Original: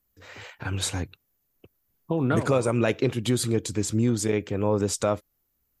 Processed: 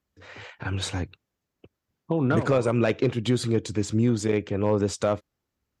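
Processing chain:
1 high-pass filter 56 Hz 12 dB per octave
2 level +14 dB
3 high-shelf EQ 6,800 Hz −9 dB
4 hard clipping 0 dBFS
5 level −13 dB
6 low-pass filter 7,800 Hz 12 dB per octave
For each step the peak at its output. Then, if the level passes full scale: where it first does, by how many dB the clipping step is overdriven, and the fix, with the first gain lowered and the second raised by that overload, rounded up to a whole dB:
−9.0, +5.0, +4.5, 0.0, −13.0, −13.0 dBFS
step 2, 4.5 dB
step 2 +9 dB, step 5 −8 dB

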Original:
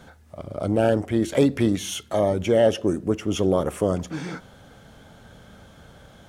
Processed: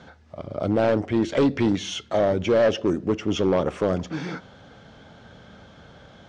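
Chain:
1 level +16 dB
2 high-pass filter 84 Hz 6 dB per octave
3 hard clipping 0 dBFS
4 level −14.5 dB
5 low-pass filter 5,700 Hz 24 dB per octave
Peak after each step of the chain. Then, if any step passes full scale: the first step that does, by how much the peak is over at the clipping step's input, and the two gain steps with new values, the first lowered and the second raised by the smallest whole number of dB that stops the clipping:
+9.5, +9.0, 0.0, −14.5, −14.0 dBFS
step 1, 9.0 dB
step 1 +7 dB, step 4 −5.5 dB

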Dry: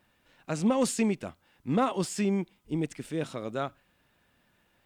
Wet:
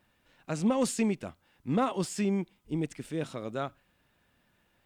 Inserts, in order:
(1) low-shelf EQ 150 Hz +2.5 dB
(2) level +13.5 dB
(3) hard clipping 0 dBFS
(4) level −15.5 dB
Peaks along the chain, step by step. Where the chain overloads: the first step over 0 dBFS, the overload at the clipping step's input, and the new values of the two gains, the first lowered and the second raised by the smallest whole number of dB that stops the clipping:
−15.5, −2.0, −2.0, −17.5 dBFS
no step passes full scale

